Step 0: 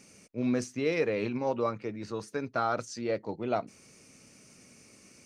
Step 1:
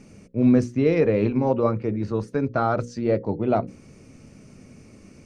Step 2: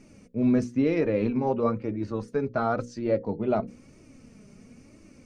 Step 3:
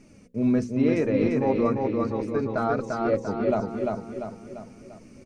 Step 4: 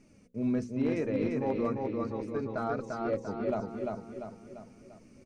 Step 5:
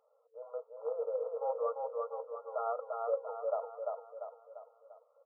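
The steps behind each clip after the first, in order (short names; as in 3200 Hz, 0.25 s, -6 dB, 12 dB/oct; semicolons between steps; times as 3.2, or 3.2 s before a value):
tilt -3.5 dB/oct; notches 60/120/180/240/300/360/420/480/540 Hz; gain +5.5 dB
flange 1 Hz, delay 3 ms, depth 2.1 ms, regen +44%
feedback echo 0.345 s, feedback 48%, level -3 dB
overloaded stage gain 13.5 dB; gain -7.5 dB
sample sorter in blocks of 8 samples; FFT band-pass 450–1400 Hz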